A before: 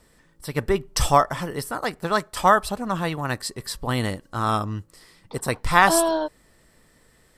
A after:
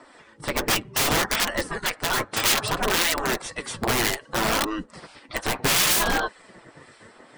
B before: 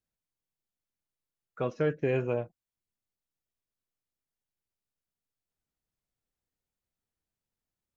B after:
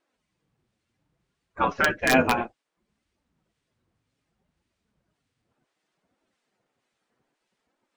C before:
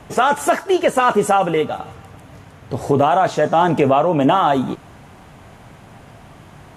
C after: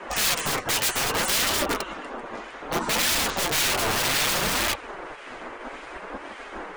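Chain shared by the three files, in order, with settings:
bin magnitudes rounded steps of 15 dB; tone controls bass +5 dB, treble -8 dB; spectral gate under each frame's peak -15 dB weak; elliptic low-pass 9400 Hz, stop band 40 dB; in parallel at +2 dB: limiter -23.5 dBFS; on the sum: high shelf 2300 Hz -5 dB; wrapped overs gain 24.5 dB; harmonic tremolo 1.8 Hz, depth 50%, crossover 1600 Hz; flange 0.64 Hz, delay 3 ms, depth 6.3 ms, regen -29%; match loudness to -23 LUFS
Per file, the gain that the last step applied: +15.0, +20.5, +11.5 dB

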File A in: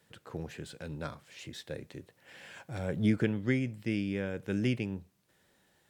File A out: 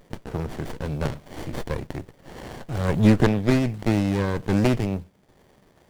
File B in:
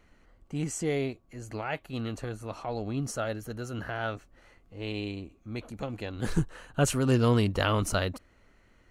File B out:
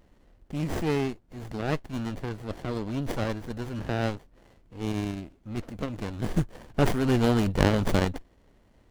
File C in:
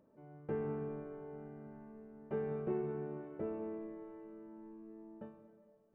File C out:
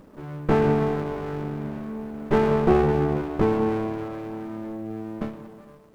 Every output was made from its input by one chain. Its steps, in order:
high shelf 2100 Hz +9.5 dB; running maximum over 33 samples; normalise peaks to -6 dBFS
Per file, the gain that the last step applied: +12.0, +2.0, +20.0 dB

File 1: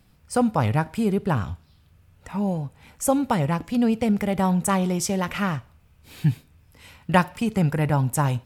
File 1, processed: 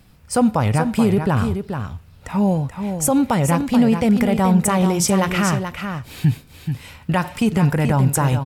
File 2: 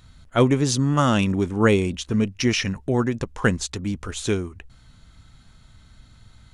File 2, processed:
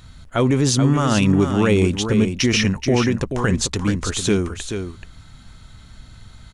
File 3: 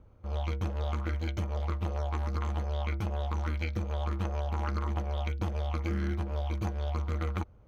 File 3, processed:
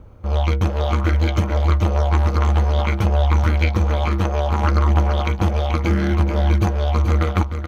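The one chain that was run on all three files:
limiter -15.5 dBFS; echo 0.431 s -7.5 dB; match loudness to -19 LUFS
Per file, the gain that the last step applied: +7.5, +6.5, +14.0 dB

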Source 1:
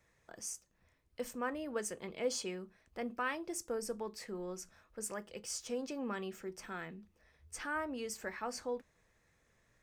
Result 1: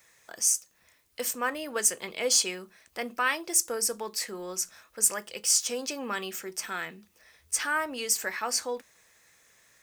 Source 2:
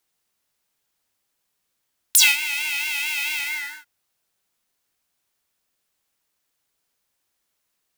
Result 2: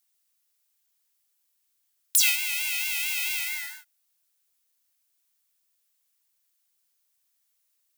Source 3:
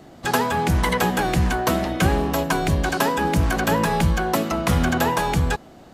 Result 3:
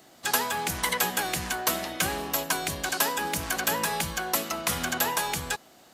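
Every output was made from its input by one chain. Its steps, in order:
tilt +3.5 dB/oct; maximiser -2 dB; normalise peaks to -9 dBFS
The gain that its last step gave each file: +10.5, -8.0, -5.0 dB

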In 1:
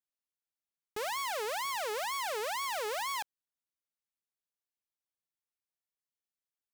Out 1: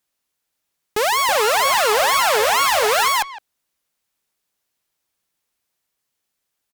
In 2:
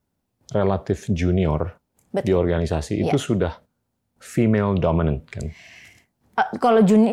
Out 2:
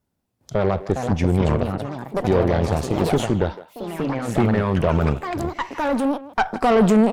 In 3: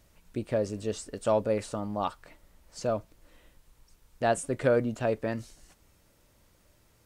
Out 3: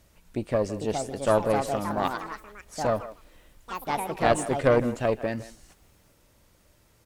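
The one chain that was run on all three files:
echoes that change speed 0.524 s, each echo +4 st, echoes 3, each echo -6 dB; added harmonics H 4 -18 dB, 8 -26 dB, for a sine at -4.5 dBFS; speakerphone echo 0.16 s, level -15 dB; normalise peaks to -6 dBFS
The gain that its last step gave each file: +17.0, -0.5, +2.5 dB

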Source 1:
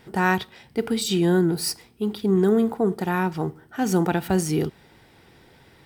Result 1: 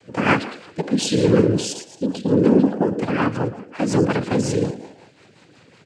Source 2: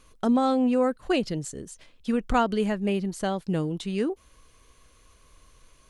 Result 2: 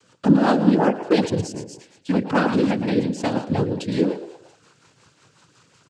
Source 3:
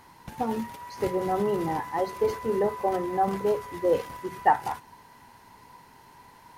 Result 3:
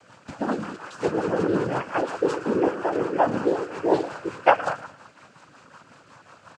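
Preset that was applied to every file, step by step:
frequency-shifting echo 0.112 s, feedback 41%, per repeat +53 Hz, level -12 dB; noise vocoder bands 8; rotary speaker horn 5.5 Hz; normalise peaks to -3 dBFS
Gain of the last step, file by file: +5.5, +7.5, +5.5 dB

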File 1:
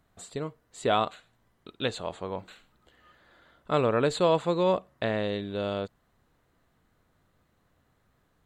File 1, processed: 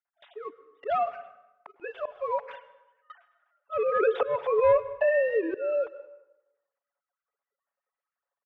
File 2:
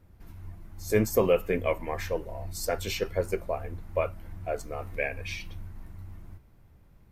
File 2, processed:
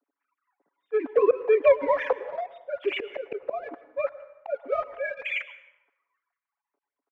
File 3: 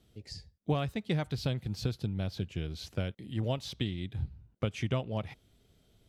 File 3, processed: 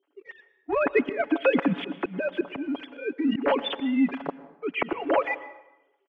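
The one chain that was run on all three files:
sine-wave speech; HPF 260 Hz 24 dB/oct; gate with hold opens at -50 dBFS; dynamic EQ 500 Hz, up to -4 dB, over -38 dBFS, Q 4.9; comb 7.1 ms, depth 66%; sample leveller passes 1; auto swell 0.487 s; compressor 2:1, threshold -37 dBFS; LPF 2500 Hz 12 dB/oct; plate-style reverb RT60 0.95 s, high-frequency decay 0.7×, pre-delay 95 ms, DRR 15 dB; match loudness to -27 LUFS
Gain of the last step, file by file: +10.5, +15.5, +18.0 dB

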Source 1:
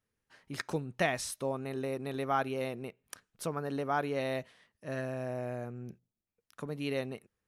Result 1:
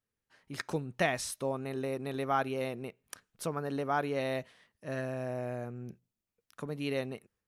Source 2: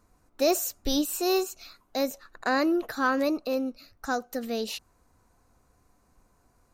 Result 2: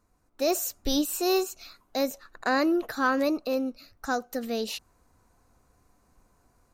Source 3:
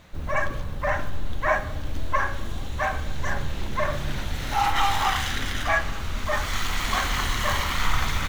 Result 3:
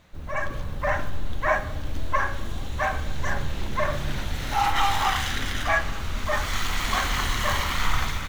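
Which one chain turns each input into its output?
AGC gain up to 6 dB; gain -5.5 dB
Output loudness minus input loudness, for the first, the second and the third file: +0.5, 0.0, 0.0 LU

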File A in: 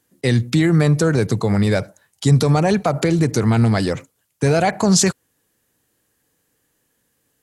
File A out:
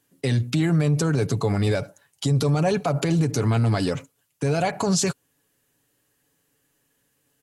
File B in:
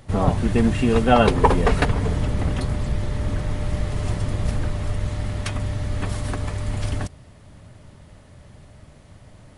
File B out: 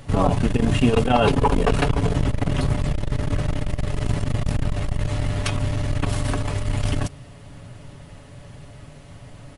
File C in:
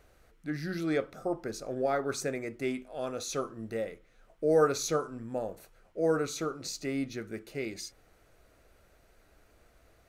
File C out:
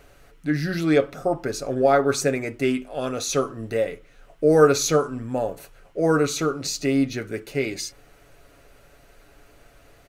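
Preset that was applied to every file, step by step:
bell 2800 Hz +3.5 dB 0.31 oct; comb 7.1 ms, depth 46%; dynamic EQ 1900 Hz, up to -5 dB, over -43 dBFS, Q 5.4; limiter -10 dBFS; core saturation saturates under 110 Hz; match loudness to -23 LUFS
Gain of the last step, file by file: -3.0, +4.0, +9.0 dB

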